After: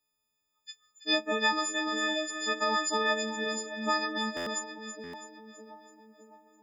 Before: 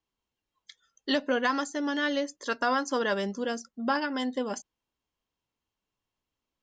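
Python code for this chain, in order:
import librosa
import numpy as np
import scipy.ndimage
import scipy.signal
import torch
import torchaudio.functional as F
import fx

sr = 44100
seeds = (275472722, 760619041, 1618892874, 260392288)

y = fx.freq_snap(x, sr, grid_st=6)
y = fx.echo_split(y, sr, split_hz=900.0, low_ms=608, high_ms=329, feedback_pct=52, wet_db=-9.5)
y = fx.buffer_glitch(y, sr, at_s=(4.36, 5.03), block=512, repeats=8)
y = F.gain(torch.from_numpy(y), -4.5).numpy()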